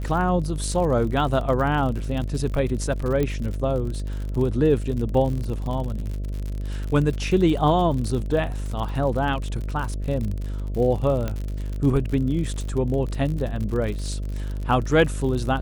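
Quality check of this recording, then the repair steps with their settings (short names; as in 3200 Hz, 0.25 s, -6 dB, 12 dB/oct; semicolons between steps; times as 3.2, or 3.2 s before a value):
buzz 50 Hz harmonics 13 -28 dBFS
crackle 57/s -29 dBFS
3.23 pop -13 dBFS
11.28 pop -14 dBFS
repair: de-click; de-hum 50 Hz, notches 13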